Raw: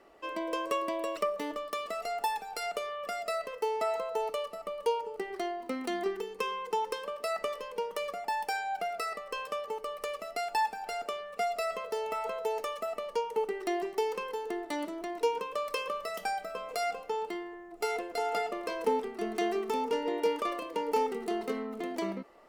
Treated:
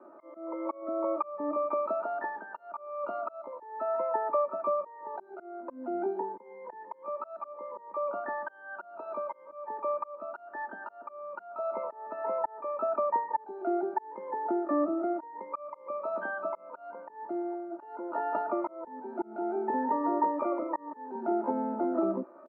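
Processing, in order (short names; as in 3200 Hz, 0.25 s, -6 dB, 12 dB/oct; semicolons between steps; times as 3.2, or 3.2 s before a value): elliptic band-pass 160–640 Hz, stop band 80 dB; harmoniser +12 st -3 dB; compressor 2.5:1, threshold -33 dBFS, peak gain reduction 7.5 dB; auto swell 0.411 s; comb 3.3 ms, depth 89%; gain +4.5 dB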